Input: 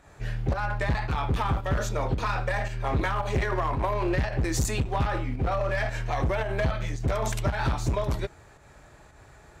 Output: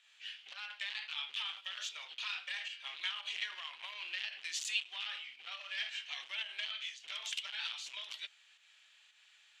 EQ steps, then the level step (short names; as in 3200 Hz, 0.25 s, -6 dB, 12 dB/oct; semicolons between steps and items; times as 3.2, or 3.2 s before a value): ladder band-pass 3300 Hz, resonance 70%; tilt +3 dB/oct; high shelf 2600 Hz -10 dB; +9.0 dB